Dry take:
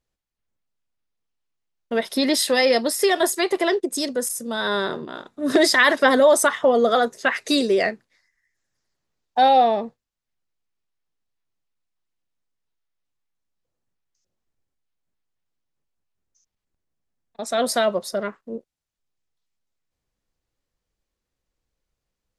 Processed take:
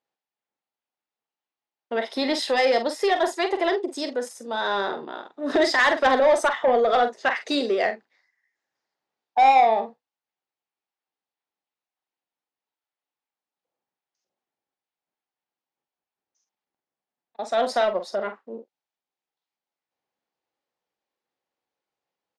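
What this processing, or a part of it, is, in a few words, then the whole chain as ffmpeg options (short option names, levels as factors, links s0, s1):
intercom: -filter_complex "[0:a]highpass=300,lowpass=4300,equalizer=f=820:t=o:w=0.4:g=8,asoftclip=type=tanh:threshold=0.299,asplit=2[s0][s1];[s1]adelay=45,volume=0.355[s2];[s0][s2]amix=inputs=2:normalize=0,volume=0.794"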